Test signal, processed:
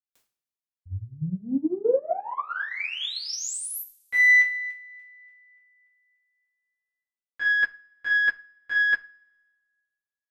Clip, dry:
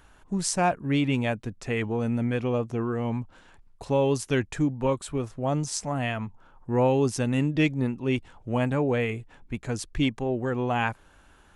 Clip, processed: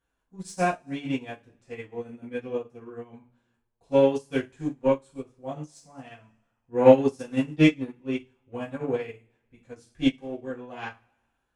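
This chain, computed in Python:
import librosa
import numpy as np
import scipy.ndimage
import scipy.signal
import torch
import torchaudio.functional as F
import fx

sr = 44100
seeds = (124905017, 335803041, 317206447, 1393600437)

y = fx.cheby_harmonics(x, sr, harmonics=(3, 6), levels_db=(-17, -39), full_scale_db=-8.5)
y = fx.rev_double_slope(y, sr, seeds[0], early_s=0.38, late_s=1.6, knee_db=-22, drr_db=-7.0)
y = fx.upward_expand(y, sr, threshold_db=-29.0, expansion=2.5)
y = y * librosa.db_to_amplitude(2.5)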